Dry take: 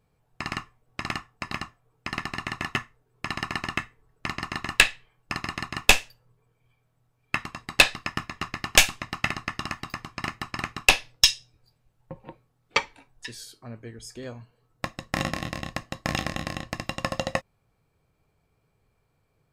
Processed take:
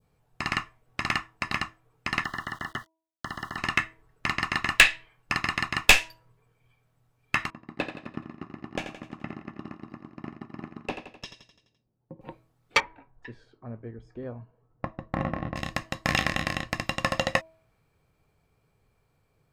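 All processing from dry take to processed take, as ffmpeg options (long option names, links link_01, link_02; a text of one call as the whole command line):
ffmpeg -i in.wav -filter_complex "[0:a]asettb=1/sr,asplit=3[link_01][link_02][link_03];[link_01]atrim=end=2.244[link_04];[link_02]atrim=start=2.24:end=3.58,asetpts=PTS-STARTPTS,afade=type=in:duration=0.004:curve=qsin,afade=type=out:start_time=1.336:duration=0.004:curve=qsin,acrossover=split=390|880|1900[link_05][link_06][link_07][link_08];[link_05]acompressor=threshold=-41dB:ratio=3[link_09];[link_06]acompressor=threshold=-48dB:ratio=3[link_10];[link_07]acompressor=threshold=-38dB:ratio=3[link_11];[link_08]acompressor=threshold=-48dB:ratio=3[link_12];[link_09][link_10][link_11][link_12]amix=inputs=4:normalize=0,aeval=exprs='val(0)*gte(abs(val(0)),0.00299)':channel_layout=same,asuperstop=centerf=2400:order=20:qfactor=2.9[link_13];[link_03]atrim=start=3.576[link_14];[link_04][link_13]acrossfade=duration=0.004:curve1=hsin:curve2=qsin[link_15];[link_15][link_14]acrossfade=duration=0.004:curve1=qsin:curve2=hsin,asettb=1/sr,asplit=3[link_16][link_17][link_18];[link_16]atrim=end=7.504[link_19];[link_17]atrim=start=7.5:end=12.21,asetpts=PTS-STARTPTS,afade=type=in:duration=0.004:curve=qsin,afade=type=out:start_time=4.706:duration=0.004:curve=qsin,bandpass=frequency=270:width_type=q:width=1.4,aecho=1:1:85|170|255|340|425|510:0.335|0.184|0.101|0.0557|0.0307|0.0169,atrim=end_sample=207711[link_20];[link_18]atrim=start=12.206[link_21];[link_19][link_20]acrossfade=duration=0.004:curve1=hsin:curve2=qsin[link_22];[link_22][link_21]acrossfade=duration=0.004:curve1=qsin:curve2=hsin,asettb=1/sr,asplit=3[link_23][link_24][link_25];[link_23]atrim=end=12.804[link_26];[link_24]atrim=start=12.8:end=15.56,asetpts=PTS-STARTPTS,afade=type=in:duration=0.004:curve=qsin,afade=type=out:start_time=2.756:duration=0.004:curve=qsin,lowpass=1100,asoftclip=type=hard:threshold=-18dB[link_27];[link_25]atrim=start=15.556[link_28];[link_26][link_27]acrossfade=duration=0.004:curve1=hsin:curve2=qsin[link_29];[link_29][link_28]acrossfade=duration=0.004:curve1=qsin:curve2=hsin,bandreject=frequency=323.2:width_type=h:width=4,bandreject=frequency=646.4:width_type=h:width=4,bandreject=frequency=969.6:width_type=h:width=4,adynamicequalizer=threshold=0.0126:dfrequency=2000:dqfactor=0.84:tfrequency=2000:tqfactor=0.84:attack=5:release=100:ratio=0.375:range=3.5:mode=boostabove:tftype=bell,acontrast=79,volume=-6dB" out.wav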